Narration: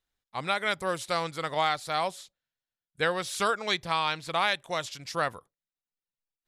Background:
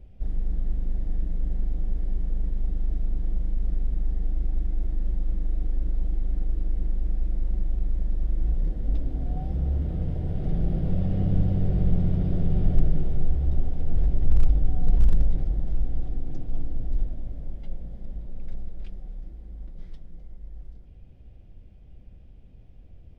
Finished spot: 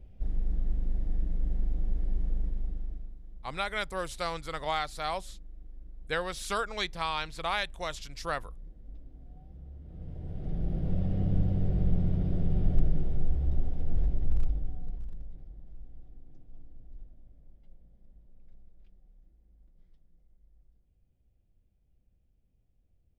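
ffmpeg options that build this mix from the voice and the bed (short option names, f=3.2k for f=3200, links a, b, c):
-filter_complex "[0:a]adelay=3100,volume=-4.5dB[a];[1:a]volume=13.5dB,afade=t=out:st=2.3:d=0.86:silence=0.125893,afade=t=in:st=9.82:d=1.12:silence=0.149624,afade=t=out:st=13.94:d=1.09:silence=0.141254[b];[a][b]amix=inputs=2:normalize=0"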